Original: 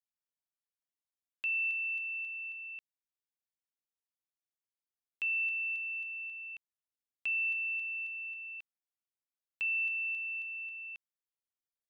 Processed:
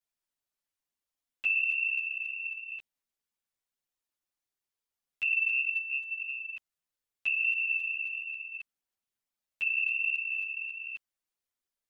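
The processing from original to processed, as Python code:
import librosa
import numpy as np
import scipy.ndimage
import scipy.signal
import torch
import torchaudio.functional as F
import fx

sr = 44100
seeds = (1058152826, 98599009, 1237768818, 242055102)

y = fx.chorus_voices(x, sr, voices=6, hz=1.4, base_ms=10, depth_ms=3.0, mix_pct=60)
y = y * librosa.db_to_amplitude(7.0)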